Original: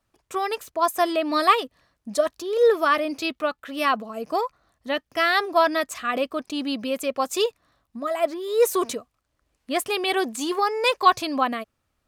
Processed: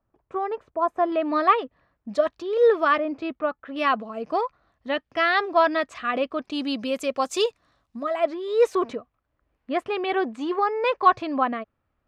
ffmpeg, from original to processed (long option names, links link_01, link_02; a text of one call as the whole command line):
ffmpeg -i in.wav -af "asetnsamples=nb_out_samples=441:pad=0,asendcmd='1.12 lowpass f 1900;2.09 lowpass f 3100;2.98 lowpass f 1500;3.76 lowpass f 3300;6.52 lowpass f 7300;8.03 lowpass f 3500;8.75 lowpass f 2000',lowpass=1100" out.wav